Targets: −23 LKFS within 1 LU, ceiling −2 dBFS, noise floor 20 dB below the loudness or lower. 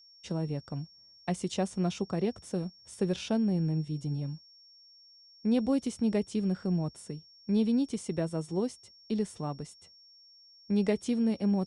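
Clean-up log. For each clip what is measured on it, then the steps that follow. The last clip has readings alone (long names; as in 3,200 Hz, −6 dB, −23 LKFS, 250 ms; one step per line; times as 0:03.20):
interfering tone 5,500 Hz; level of the tone −55 dBFS; integrated loudness −32.0 LKFS; sample peak −16.5 dBFS; target loudness −23.0 LKFS
→ notch filter 5,500 Hz, Q 30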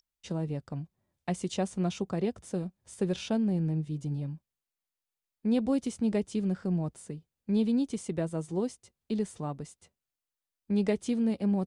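interfering tone none found; integrated loudness −32.0 LKFS; sample peak −17.0 dBFS; target loudness −23.0 LKFS
→ level +9 dB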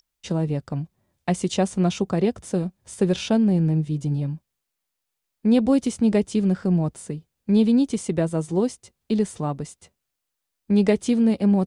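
integrated loudness −23.0 LKFS; sample peak −8.0 dBFS; background noise floor −81 dBFS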